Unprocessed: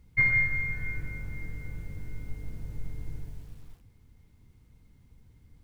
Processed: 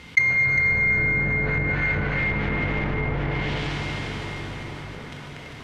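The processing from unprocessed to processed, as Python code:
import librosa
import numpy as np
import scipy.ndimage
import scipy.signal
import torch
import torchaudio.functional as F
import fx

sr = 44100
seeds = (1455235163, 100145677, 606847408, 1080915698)

p1 = fx.highpass(x, sr, hz=67.0, slope=6)
p2 = fx.peak_eq(p1, sr, hz=3100.0, db=5.0, octaves=0.66)
p3 = fx.leveller(p2, sr, passes=3)
p4 = fx.rev_plate(p3, sr, seeds[0], rt60_s=4.2, hf_ratio=0.75, predelay_ms=0, drr_db=-4.0)
p5 = fx.env_lowpass_down(p4, sr, base_hz=710.0, full_db=-17.5)
p6 = fx.tilt_eq(p5, sr, slope=4.5)
p7 = p6 + fx.echo_single(p6, sr, ms=402, db=-11.5, dry=0)
p8 = fx.env_lowpass(p7, sr, base_hz=2500.0, full_db=-11.0)
p9 = fx.env_flatten(p8, sr, amount_pct=50)
y = p9 * 10.0 ** (3.0 / 20.0)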